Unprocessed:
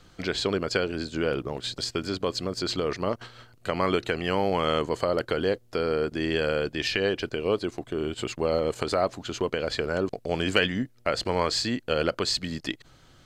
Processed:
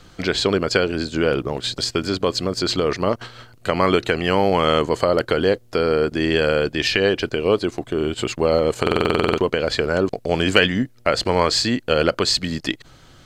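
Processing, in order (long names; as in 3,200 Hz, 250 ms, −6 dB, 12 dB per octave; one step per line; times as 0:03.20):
buffer that repeats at 0:08.82, samples 2,048, times 11
level +7.5 dB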